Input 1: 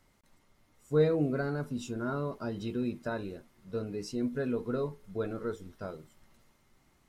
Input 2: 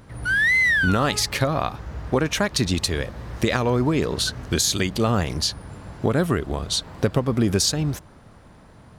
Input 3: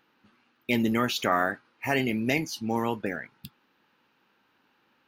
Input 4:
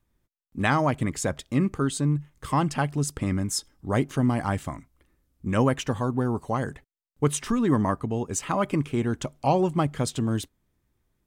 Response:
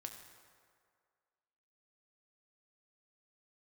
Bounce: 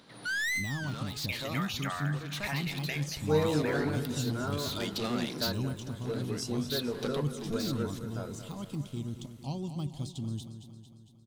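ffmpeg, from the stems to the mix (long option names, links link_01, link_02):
-filter_complex "[0:a]highshelf=frequency=3700:gain=12,adelay=2350,volume=-2dB,asplit=2[link_01][link_02];[link_02]volume=-11dB[link_03];[1:a]highpass=frequency=170:width=0.5412,highpass=frequency=170:width=1.3066,equalizer=frequency=3900:width_type=o:width=0.79:gain=15,asoftclip=type=tanh:threshold=-21.5dB,volume=-8dB[link_04];[2:a]highpass=940,acompressor=threshold=-35dB:ratio=6,adelay=600,volume=0.5dB,asplit=2[link_05][link_06];[link_06]volume=-14dB[link_07];[3:a]deesser=0.85,firequalizer=gain_entry='entry(150,0);entry(490,-16);entry(1000,-13);entry(1600,-25);entry(3500,5);entry(7200,1)':delay=0.05:min_phase=1,volume=-8dB,asplit=3[link_08][link_09][link_10];[link_09]volume=-10.5dB[link_11];[link_10]apad=whole_len=396368[link_12];[link_04][link_12]sidechaincompress=threshold=-41dB:ratio=8:attack=20:release=453[link_13];[link_03][link_07][link_11]amix=inputs=3:normalize=0,aecho=0:1:227|454|681|908|1135|1362|1589|1816|2043:1|0.58|0.336|0.195|0.113|0.0656|0.0381|0.0221|0.0128[link_14];[link_01][link_13][link_05][link_08][link_14]amix=inputs=5:normalize=0"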